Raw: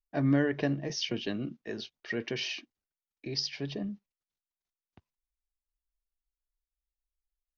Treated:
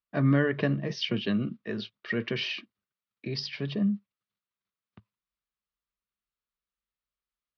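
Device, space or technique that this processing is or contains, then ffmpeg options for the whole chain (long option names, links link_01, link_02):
guitar cabinet: -af "highpass=91,equalizer=frequency=110:width_type=q:width=4:gain=7,equalizer=frequency=200:width_type=q:width=4:gain=8,equalizer=frequency=300:width_type=q:width=4:gain=-5,equalizer=frequency=780:width_type=q:width=4:gain=-8,equalizer=frequency=1200:width_type=q:width=4:gain=7,lowpass=frequency=4300:width=0.5412,lowpass=frequency=4300:width=1.3066,volume=3.5dB"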